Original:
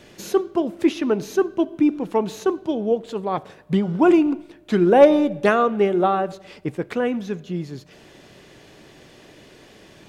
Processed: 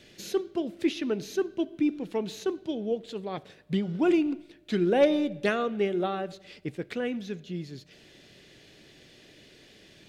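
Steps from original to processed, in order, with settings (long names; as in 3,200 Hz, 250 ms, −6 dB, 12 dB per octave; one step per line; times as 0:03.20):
graphic EQ with 10 bands 1,000 Hz −9 dB, 2,000 Hz +3 dB, 4,000 Hz +6 dB
level −7.5 dB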